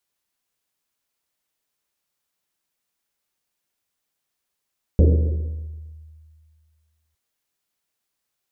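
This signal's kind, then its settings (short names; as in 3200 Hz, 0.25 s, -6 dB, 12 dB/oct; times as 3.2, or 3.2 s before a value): Risset drum length 2.16 s, pitch 78 Hz, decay 2.13 s, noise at 370 Hz, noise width 310 Hz, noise 20%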